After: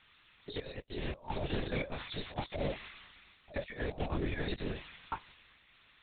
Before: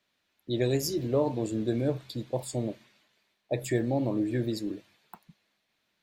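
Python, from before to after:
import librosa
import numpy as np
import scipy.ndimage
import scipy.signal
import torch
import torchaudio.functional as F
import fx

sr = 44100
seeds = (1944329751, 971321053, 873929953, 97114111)

y = scipy.signal.sosfilt(scipy.signal.butter(2, 900.0, 'highpass', fs=sr, output='sos'), x)
y = fx.over_compress(y, sr, threshold_db=-46.0, ratio=-0.5)
y = fx.lpc_vocoder(y, sr, seeds[0], excitation='whisper', order=8)
y = F.gain(torch.from_numpy(y), 9.5).numpy()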